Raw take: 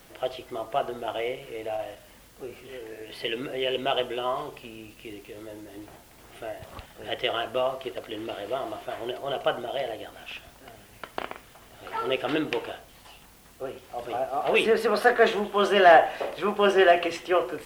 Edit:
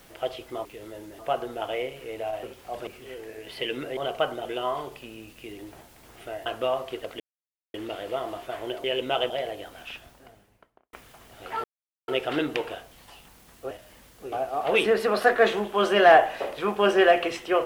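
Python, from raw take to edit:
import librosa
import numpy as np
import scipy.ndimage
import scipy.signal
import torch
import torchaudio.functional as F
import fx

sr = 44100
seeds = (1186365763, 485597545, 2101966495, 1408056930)

y = fx.studio_fade_out(x, sr, start_s=10.25, length_s=1.09)
y = fx.edit(y, sr, fx.swap(start_s=1.89, length_s=0.61, other_s=13.68, other_length_s=0.44),
    fx.swap(start_s=3.6, length_s=0.46, other_s=9.23, other_length_s=0.48),
    fx.move(start_s=5.2, length_s=0.54, to_s=0.65),
    fx.cut(start_s=6.61, length_s=0.78),
    fx.insert_silence(at_s=8.13, length_s=0.54),
    fx.insert_silence(at_s=12.05, length_s=0.44), tone=tone)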